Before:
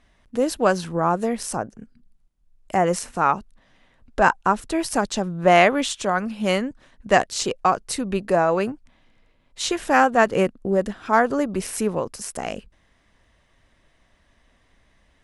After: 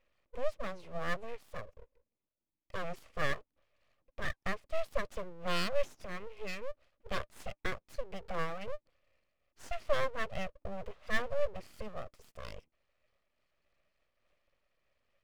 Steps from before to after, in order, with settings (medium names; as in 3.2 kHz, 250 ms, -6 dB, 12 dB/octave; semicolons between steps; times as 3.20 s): vowel filter u; peaking EQ 590 Hz -5 dB 1.3 oct; full-wave rectifier; random flutter of the level, depth 60%; trim +5.5 dB